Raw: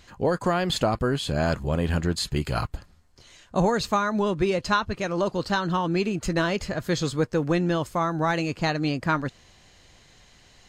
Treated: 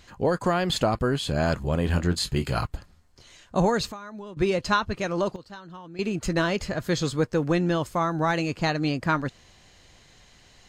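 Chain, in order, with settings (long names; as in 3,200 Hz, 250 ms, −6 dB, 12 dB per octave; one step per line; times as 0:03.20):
0:01.84–0:02.56: double-tracking delay 22 ms −9 dB
0:03.86–0:04.37: downward compressor 4 to 1, threshold −40 dBFS, peak gain reduction 17.5 dB
0:04.96–0:06.39: duck −17.5 dB, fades 0.40 s logarithmic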